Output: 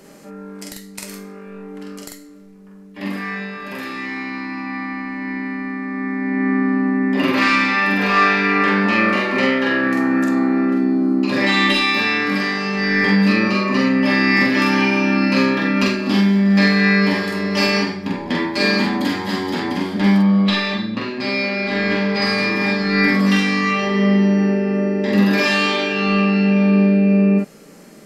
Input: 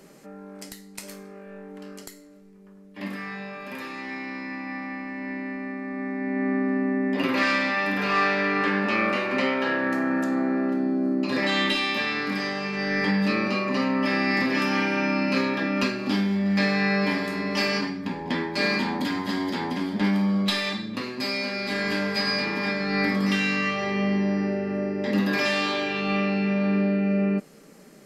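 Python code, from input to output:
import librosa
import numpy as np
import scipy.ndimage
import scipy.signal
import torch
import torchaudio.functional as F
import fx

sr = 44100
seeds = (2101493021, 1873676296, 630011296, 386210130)

y = fx.lowpass(x, sr, hz=3900.0, slope=12, at=(20.18, 22.22))
y = fx.doubler(y, sr, ms=45.0, db=-2)
y = y * 10.0 ** (5.0 / 20.0)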